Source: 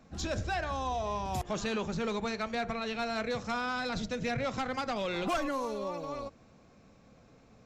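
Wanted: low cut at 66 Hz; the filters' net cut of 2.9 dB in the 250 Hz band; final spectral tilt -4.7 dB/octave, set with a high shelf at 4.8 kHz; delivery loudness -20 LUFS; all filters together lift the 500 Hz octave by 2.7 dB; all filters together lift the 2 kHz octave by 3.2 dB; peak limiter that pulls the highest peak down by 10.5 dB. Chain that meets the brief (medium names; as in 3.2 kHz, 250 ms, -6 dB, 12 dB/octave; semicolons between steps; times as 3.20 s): high-pass 66 Hz; peaking EQ 250 Hz -4.5 dB; peaking EQ 500 Hz +4 dB; peaking EQ 2 kHz +5 dB; treble shelf 4.8 kHz -4.5 dB; trim +18.5 dB; peak limiter -12 dBFS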